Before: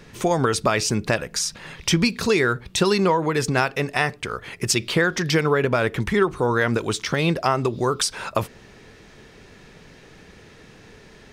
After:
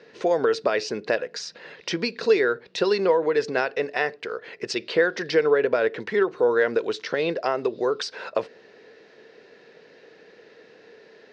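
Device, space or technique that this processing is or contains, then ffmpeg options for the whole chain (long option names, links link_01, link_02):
phone earpiece: -af "highpass=410,equalizer=frequency=470:width_type=q:width=4:gain=7,equalizer=frequency=860:width_type=q:width=4:gain=-6,equalizer=frequency=1200:width_type=q:width=4:gain=-9,equalizer=frequency=2300:width_type=q:width=4:gain=-6,equalizer=frequency=3300:width_type=q:width=4:gain=-8,lowpass=frequency=4400:width=0.5412,lowpass=frequency=4400:width=1.3066"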